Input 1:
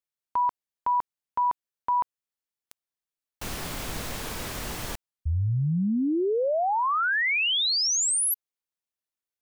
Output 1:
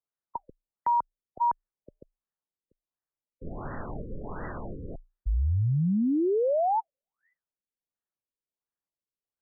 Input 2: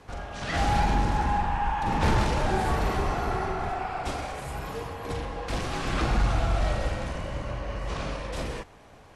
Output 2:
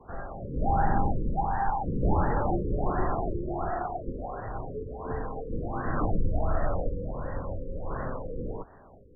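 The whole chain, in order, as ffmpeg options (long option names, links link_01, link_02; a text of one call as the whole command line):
ffmpeg -i in.wav -af "afreqshift=-29,afftfilt=real='re*lt(b*sr/1024,530*pow(2000/530,0.5+0.5*sin(2*PI*1.4*pts/sr)))':imag='im*lt(b*sr/1024,530*pow(2000/530,0.5+0.5*sin(2*PI*1.4*pts/sr)))':win_size=1024:overlap=0.75" out.wav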